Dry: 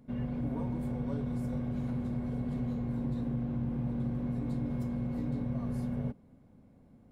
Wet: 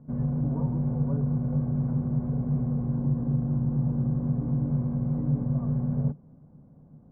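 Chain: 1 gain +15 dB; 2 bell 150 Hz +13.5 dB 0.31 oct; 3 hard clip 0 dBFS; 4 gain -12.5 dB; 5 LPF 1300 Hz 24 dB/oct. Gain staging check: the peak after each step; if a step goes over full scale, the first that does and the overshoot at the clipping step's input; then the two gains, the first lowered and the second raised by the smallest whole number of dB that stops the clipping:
-7.5, -2.5, -2.5, -15.0, -15.0 dBFS; no overload

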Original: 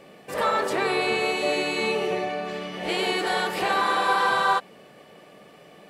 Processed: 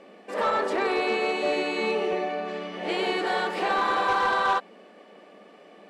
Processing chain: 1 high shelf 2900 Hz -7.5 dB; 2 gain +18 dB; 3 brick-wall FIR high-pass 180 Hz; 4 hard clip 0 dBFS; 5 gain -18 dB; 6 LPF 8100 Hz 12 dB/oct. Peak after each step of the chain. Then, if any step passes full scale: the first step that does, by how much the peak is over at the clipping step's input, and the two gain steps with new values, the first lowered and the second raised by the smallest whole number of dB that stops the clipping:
-11.5, +6.5, +6.5, 0.0, -18.0, -17.5 dBFS; step 2, 6.5 dB; step 2 +11 dB, step 5 -11 dB

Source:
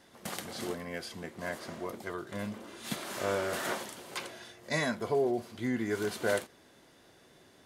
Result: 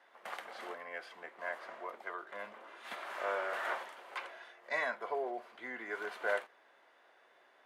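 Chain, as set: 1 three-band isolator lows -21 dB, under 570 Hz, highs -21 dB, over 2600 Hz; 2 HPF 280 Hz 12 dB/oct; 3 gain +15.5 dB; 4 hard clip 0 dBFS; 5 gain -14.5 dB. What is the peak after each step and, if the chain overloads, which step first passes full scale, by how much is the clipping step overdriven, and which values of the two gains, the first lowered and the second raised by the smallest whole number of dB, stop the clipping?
-20.0, -20.5, -5.0, -5.0, -19.5 dBFS; no overload

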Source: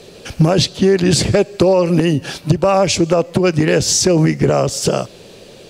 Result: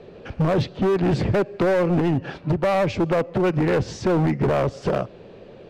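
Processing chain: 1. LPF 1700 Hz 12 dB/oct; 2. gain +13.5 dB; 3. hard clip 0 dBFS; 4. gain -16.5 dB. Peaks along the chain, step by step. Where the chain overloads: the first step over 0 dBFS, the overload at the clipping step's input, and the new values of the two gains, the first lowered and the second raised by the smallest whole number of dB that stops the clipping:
-4.5, +9.0, 0.0, -16.5 dBFS; step 2, 9.0 dB; step 2 +4.5 dB, step 4 -7.5 dB

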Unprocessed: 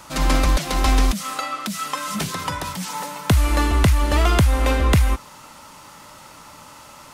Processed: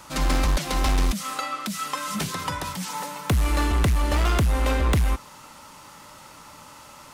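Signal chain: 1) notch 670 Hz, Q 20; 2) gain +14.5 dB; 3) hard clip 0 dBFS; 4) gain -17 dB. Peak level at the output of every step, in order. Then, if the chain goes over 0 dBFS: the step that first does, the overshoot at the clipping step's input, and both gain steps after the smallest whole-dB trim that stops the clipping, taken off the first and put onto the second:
-6.5, +8.0, 0.0, -17.0 dBFS; step 2, 8.0 dB; step 2 +6.5 dB, step 4 -9 dB

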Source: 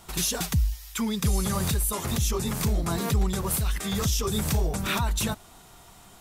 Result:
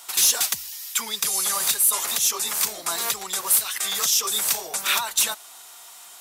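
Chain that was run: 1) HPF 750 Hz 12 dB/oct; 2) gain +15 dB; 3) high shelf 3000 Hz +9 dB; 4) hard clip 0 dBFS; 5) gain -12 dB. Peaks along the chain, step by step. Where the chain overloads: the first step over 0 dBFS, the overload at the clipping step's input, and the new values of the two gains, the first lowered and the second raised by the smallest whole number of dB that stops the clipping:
-14.5, +0.5, +8.5, 0.0, -12.0 dBFS; step 2, 8.5 dB; step 2 +6 dB, step 5 -3 dB

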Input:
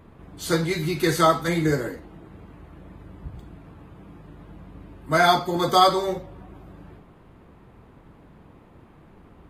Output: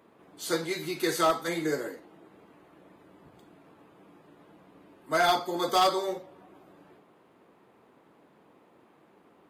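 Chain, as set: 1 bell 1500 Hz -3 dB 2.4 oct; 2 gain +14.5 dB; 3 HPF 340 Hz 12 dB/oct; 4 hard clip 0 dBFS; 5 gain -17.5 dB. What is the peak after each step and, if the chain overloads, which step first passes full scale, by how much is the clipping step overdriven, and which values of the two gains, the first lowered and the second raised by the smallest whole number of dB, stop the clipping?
-5.5, +9.0, +8.5, 0.0, -17.5 dBFS; step 2, 8.5 dB; step 2 +5.5 dB, step 5 -8.5 dB

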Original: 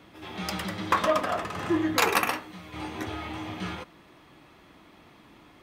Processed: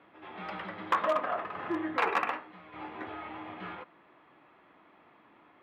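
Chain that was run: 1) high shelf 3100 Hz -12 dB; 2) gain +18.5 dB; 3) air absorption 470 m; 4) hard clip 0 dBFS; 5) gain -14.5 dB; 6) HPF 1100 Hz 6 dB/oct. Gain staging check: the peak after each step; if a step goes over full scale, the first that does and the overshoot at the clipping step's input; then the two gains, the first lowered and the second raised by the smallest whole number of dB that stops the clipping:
-13.5, +5.0, +3.5, 0.0, -14.5, -15.0 dBFS; step 2, 3.5 dB; step 2 +14.5 dB, step 5 -10.5 dB

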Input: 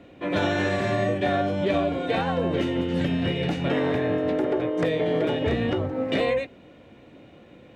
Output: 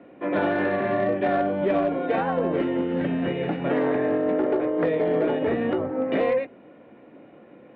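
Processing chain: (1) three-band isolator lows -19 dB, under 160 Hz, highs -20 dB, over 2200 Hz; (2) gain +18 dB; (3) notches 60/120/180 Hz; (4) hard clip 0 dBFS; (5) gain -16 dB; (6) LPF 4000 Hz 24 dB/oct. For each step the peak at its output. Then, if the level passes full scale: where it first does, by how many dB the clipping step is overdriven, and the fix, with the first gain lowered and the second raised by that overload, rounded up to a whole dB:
-13.0, +5.0, +5.0, 0.0, -16.0, -15.5 dBFS; step 2, 5.0 dB; step 2 +13 dB, step 5 -11 dB

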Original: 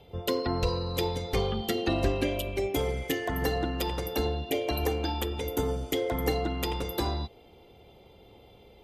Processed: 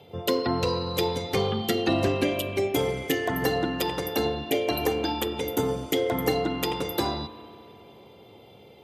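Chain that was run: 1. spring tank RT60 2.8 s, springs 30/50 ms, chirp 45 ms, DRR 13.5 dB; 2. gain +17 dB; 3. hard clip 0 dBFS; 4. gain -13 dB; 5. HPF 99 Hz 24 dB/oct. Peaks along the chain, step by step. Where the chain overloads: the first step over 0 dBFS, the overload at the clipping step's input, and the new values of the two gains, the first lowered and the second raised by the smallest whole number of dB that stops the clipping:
-13.5, +3.5, 0.0, -13.0, -10.0 dBFS; step 2, 3.5 dB; step 2 +13 dB, step 4 -9 dB

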